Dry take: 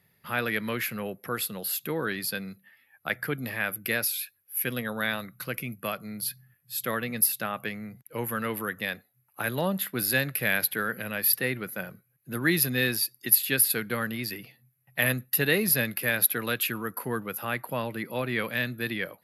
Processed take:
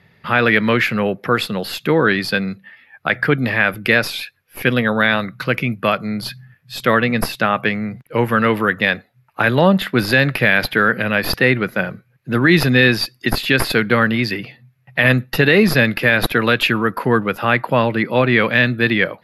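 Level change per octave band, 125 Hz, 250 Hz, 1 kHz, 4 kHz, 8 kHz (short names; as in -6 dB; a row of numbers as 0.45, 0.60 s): +15.0, +15.0, +15.0, +11.5, -6.0 dB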